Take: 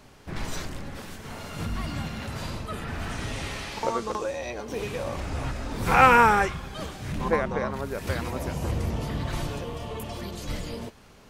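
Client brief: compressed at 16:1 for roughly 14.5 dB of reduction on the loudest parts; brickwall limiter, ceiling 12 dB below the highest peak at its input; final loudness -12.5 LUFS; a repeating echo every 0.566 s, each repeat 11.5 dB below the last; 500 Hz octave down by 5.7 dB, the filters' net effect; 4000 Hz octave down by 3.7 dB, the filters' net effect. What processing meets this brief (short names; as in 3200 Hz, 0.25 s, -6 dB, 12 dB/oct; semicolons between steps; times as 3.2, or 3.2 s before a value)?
bell 500 Hz -6.5 dB; bell 4000 Hz -5 dB; compressor 16:1, threshold -27 dBFS; limiter -28 dBFS; feedback echo 0.566 s, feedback 27%, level -11.5 dB; gain +25.5 dB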